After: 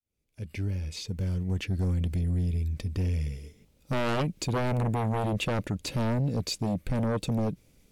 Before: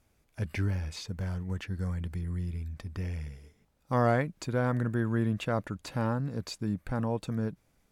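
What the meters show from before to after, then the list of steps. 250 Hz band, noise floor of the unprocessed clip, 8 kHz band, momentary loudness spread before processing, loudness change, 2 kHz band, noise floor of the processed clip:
+1.5 dB, -71 dBFS, +7.0 dB, 9 LU, +2.5 dB, 0.0 dB, -65 dBFS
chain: fade-in on the opening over 1.94 s; high-order bell 1.1 kHz -10 dB; sine folder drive 11 dB, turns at -17 dBFS; trim -6 dB

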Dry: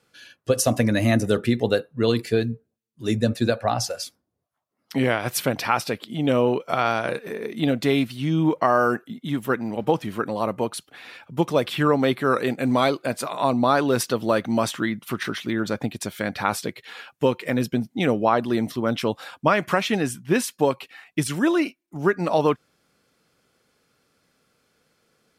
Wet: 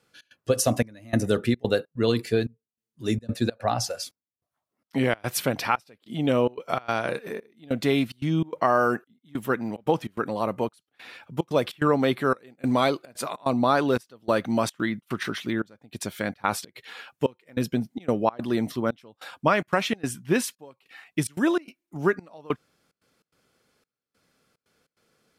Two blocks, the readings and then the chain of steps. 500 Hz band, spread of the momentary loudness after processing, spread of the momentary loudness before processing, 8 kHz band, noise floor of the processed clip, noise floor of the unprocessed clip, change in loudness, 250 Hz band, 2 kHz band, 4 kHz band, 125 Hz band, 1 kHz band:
-3.0 dB, 11 LU, 9 LU, -3.0 dB, under -85 dBFS, -75 dBFS, -3.0 dB, -3.5 dB, -3.0 dB, -3.5 dB, -3.5 dB, -3.0 dB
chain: trance gate "xx.xxxxx...xxxx." 146 bpm -24 dB; trim -2 dB

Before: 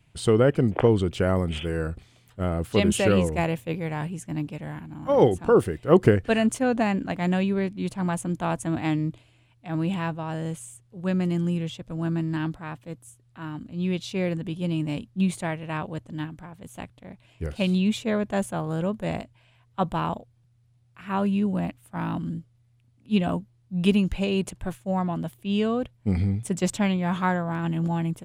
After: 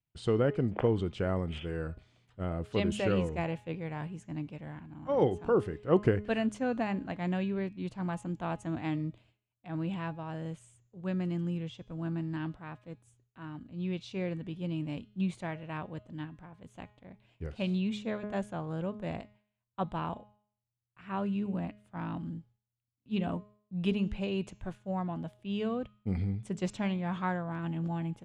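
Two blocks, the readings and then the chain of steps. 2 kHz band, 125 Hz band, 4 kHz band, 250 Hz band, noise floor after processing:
-9.0 dB, -8.0 dB, -10.0 dB, -8.5 dB, under -85 dBFS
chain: gate with hold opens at -47 dBFS; distance through air 88 m; de-hum 208.7 Hz, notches 36; trim -8 dB

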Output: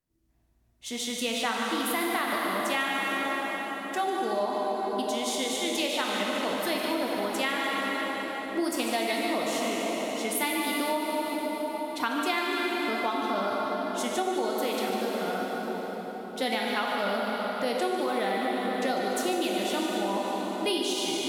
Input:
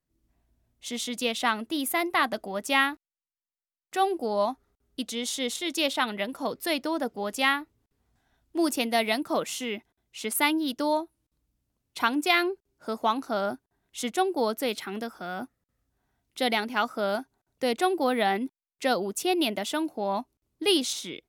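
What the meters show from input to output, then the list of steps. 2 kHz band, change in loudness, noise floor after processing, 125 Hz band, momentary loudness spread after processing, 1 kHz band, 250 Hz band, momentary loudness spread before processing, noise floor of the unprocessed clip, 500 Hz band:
-0.5 dB, -1.0 dB, -38 dBFS, +1.0 dB, 4 LU, 0.0 dB, -0.5 dB, 12 LU, under -85 dBFS, +0.5 dB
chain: on a send: two-band feedback delay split 950 Hz, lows 655 ms, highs 147 ms, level -9 dB; on the sum: plate-style reverb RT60 4.8 s, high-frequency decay 0.75×, DRR -2 dB; compression, threshold -23 dBFS, peak gain reduction 8 dB; trim -1.5 dB

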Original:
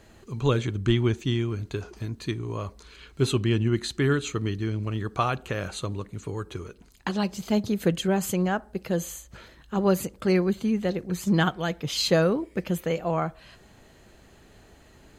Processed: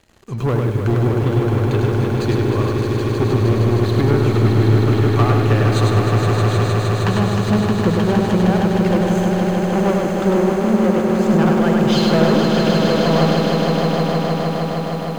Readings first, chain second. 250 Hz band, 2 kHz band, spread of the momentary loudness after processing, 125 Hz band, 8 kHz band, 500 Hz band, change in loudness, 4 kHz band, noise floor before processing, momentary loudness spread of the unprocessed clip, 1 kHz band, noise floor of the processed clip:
+11.0 dB, +8.0 dB, 4 LU, +13.0 dB, +2.5 dB, +10.5 dB, +10.5 dB, +6.5 dB, -54 dBFS, 12 LU, +11.5 dB, -22 dBFS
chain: low-pass that closes with the level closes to 1.2 kHz, closed at -21 dBFS; waveshaping leveller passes 3; echo with a slow build-up 155 ms, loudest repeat 5, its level -6 dB; bit-crushed delay 100 ms, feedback 35%, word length 7-bit, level -3.5 dB; trim -3 dB

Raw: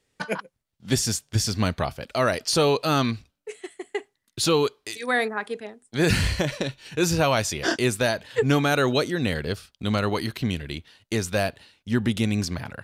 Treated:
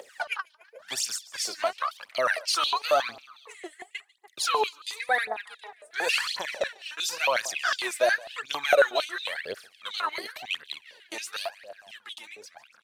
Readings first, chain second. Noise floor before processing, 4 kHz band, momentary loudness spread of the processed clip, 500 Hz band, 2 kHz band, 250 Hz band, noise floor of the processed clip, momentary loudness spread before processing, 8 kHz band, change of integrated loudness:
-79 dBFS, -1.5 dB, 19 LU, -4.5 dB, 0.0 dB, -24.0 dB, -61 dBFS, 13 LU, -4.0 dB, -3.5 dB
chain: fade out at the end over 1.79 s; on a send: feedback delay 145 ms, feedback 49%, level -21 dB; on the sum: upward compressor, threshold -31 dBFS; phaser 0.94 Hz, delay 3.4 ms, feedback 76%; step-sequenced high-pass 11 Hz 560–3500 Hz; trim -8.5 dB

